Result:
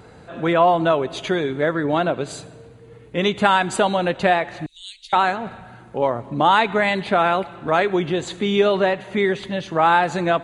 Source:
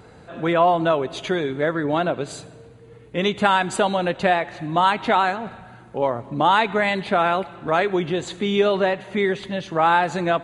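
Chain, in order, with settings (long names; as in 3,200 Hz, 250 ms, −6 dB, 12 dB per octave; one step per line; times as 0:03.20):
0:04.66–0:05.13: inverse Chebyshev band-stop filter 110–1,300 Hz, stop band 60 dB
level +1.5 dB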